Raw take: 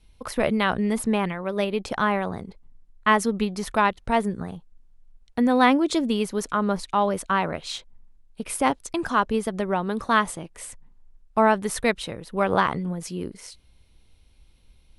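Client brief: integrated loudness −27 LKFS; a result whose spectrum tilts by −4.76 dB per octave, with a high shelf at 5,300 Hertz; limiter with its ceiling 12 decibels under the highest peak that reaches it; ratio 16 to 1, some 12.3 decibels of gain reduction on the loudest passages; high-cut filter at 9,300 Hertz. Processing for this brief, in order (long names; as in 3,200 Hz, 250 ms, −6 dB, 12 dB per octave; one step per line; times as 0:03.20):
low-pass filter 9,300 Hz
high-shelf EQ 5,300 Hz −3.5 dB
downward compressor 16 to 1, threshold −25 dBFS
level +9 dB
brickwall limiter −16.5 dBFS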